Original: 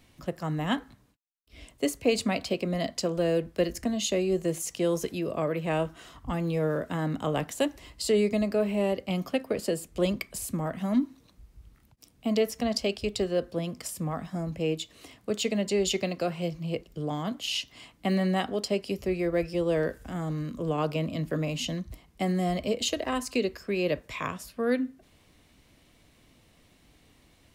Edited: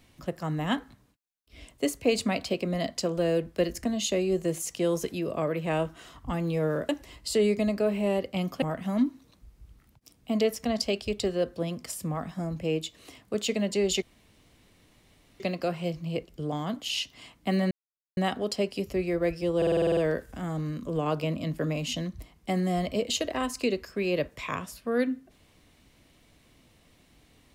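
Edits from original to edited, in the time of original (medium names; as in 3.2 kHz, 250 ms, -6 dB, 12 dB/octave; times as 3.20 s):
6.89–7.63 s: delete
9.36–10.58 s: delete
15.98 s: insert room tone 1.38 s
18.29 s: insert silence 0.46 s
19.69 s: stutter 0.05 s, 9 plays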